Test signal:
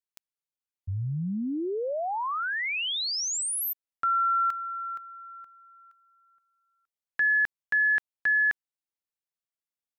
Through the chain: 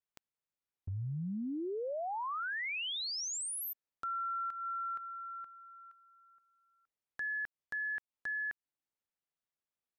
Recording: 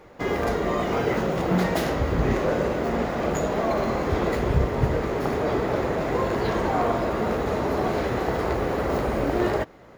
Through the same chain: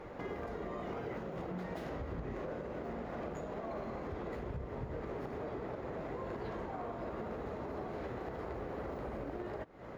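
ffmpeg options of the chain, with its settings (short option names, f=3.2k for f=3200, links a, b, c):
-af "highshelf=f=3.8k:g=-12,acompressor=threshold=-37dB:ratio=8:attack=0.21:release=355:knee=1:detection=peak,volume=1.5dB"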